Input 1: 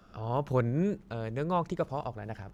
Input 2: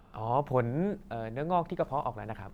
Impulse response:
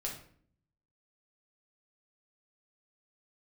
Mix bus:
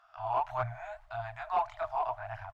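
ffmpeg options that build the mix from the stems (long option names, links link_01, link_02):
-filter_complex "[0:a]highpass=400,volume=-4dB[link_01];[1:a]agate=range=-33dB:threshold=-41dB:ratio=3:detection=peak,aphaser=in_gain=1:out_gain=1:delay=3.6:decay=0.52:speed=1.7:type=triangular,adelay=24,volume=-4dB[link_02];[link_01][link_02]amix=inputs=2:normalize=0,afftfilt=real='re*(1-between(b*sr/4096,120,620))':imag='im*(1-between(b*sr/4096,120,620))':win_size=4096:overlap=0.75,asplit=2[link_03][link_04];[link_04]highpass=frequency=720:poles=1,volume=13dB,asoftclip=type=tanh:threshold=-18dB[link_05];[link_03][link_05]amix=inputs=2:normalize=0,lowpass=frequency=1100:poles=1,volume=-6dB"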